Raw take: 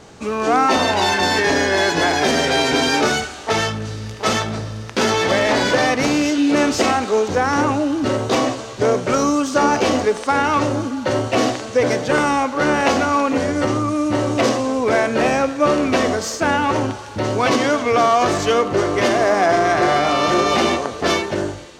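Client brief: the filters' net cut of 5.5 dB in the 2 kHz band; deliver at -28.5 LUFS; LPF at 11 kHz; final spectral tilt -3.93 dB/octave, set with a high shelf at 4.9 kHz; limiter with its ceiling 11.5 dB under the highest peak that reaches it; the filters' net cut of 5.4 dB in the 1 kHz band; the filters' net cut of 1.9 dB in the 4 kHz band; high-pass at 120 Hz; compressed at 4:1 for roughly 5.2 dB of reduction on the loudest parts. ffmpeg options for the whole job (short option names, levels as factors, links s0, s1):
-af "highpass=120,lowpass=11000,equalizer=f=1000:t=o:g=-6.5,equalizer=f=2000:t=o:g=-5,equalizer=f=4000:t=o:g=-4.5,highshelf=f=4900:g=8,acompressor=threshold=0.1:ratio=4,volume=1.12,alimiter=limit=0.1:level=0:latency=1"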